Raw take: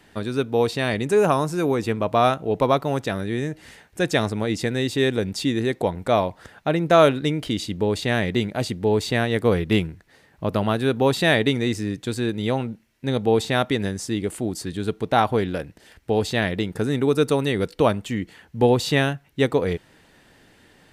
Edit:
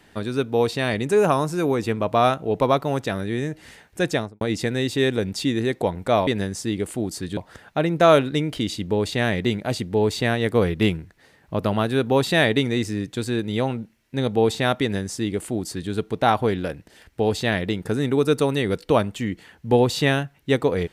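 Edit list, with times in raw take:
0:04.06–0:04.41: fade out and dull
0:13.71–0:14.81: duplicate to 0:06.27

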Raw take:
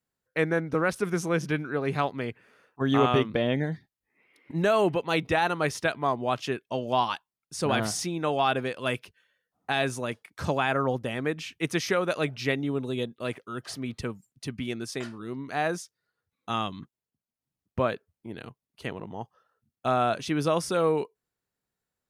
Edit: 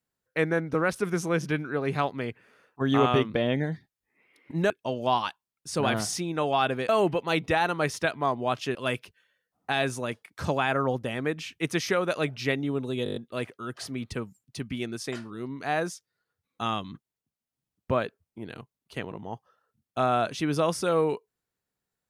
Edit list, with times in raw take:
0:04.70–0:06.56: move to 0:08.75
0:13.04: stutter 0.02 s, 7 plays

